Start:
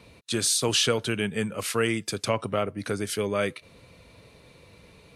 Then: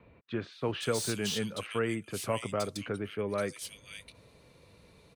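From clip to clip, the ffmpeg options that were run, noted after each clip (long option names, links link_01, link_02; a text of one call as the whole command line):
ffmpeg -i in.wav -filter_complex "[0:a]acrossover=split=2500[link_01][link_02];[link_02]adelay=520[link_03];[link_01][link_03]amix=inputs=2:normalize=0,acrossover=split=520|2600[link_04][link_05][link_06];[link_06]asoftclip=type=tanh:threshold=-28.5dB[link_07];[link_04][link_05][link_07]amix=inputs=3:normalize=0,volume=-5.5dB" out.wav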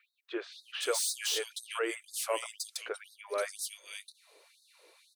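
ffmpeg -i in.wav -af "highshelf=frequency=4500:gain=6,afftfilt=real='re*gte(b*sr/1024,300*pow(3700/300,0.5+0.5*sin(2*PI*2*pts/sr)))':imag='im*gte(b*sr/1024,300*pow(3700/300,0.5+0.5*sin(2*PI*2*pts/sr)))':win_size=1024:overlap=0.75" out.wav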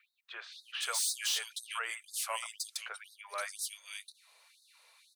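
ffmpeg -i in.wav -af "highpass=frequency=800:width=0.5412,highpass=frequency=800:width=1.3066" out.wav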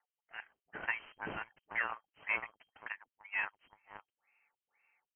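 ffmpeg -i in.wav -af "adynamicsmooth=sensitivity=5:basefreq=760,lowpass=frequency=2700:width_type=q:width=0.5098,lowpass=frequency=2700:width_type=q:width=0.6013,lowpass=frequency=2700:width_type=q:width=0.9,lowpass=frequency=2700:width_type=q:width=2.563,afreqshift=-3200,volume=4dB" out.wav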